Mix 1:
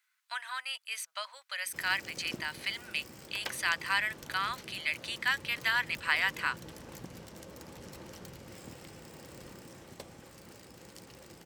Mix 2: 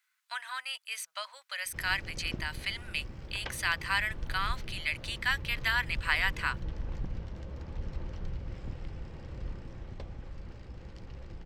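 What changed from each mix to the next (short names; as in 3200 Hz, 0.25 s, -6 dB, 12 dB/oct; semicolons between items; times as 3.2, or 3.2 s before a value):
background: add air absorption 190 m; master: remove HPF 200 Hz 12 dB/oct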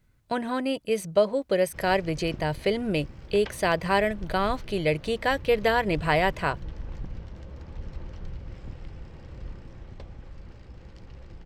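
speech: remove inverse Chebyshev high-pass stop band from 360 Hz, stop band 60 dB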